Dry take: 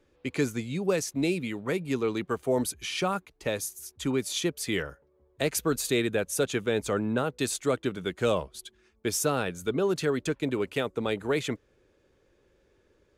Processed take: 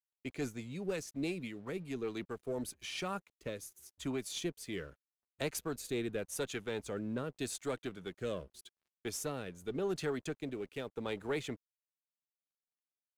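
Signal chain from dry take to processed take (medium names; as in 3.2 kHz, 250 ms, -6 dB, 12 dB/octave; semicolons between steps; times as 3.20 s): single-diode clipper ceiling -19.5 dBFS; rotary cabinet horn 6 Hz, later 0.85 Hz, at 1.48 s; crossover distortion -57.5 dBFS; trim -7 dB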